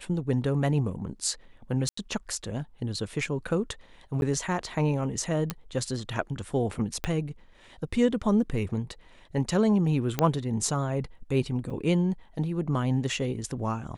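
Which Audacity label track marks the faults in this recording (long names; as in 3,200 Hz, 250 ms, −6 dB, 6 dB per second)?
1.890000	1.970000	drop-out 84 ms
4.210000	4.220000	drop-out 11 ms
5.500000	5.500000	click −14 dBFS
7.040000	7.040000	click −14 dBFS
10.190000	10.190000	click −10 dBFS
11.700000	11.700000	drop-out 4.9 ms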